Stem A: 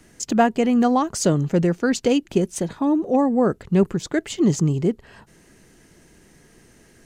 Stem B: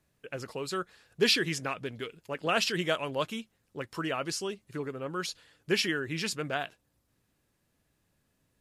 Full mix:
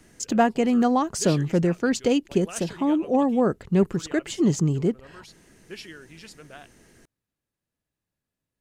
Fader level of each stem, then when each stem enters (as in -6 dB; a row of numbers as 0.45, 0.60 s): -2.5, -12.5 dB; 0.00, 0.00 s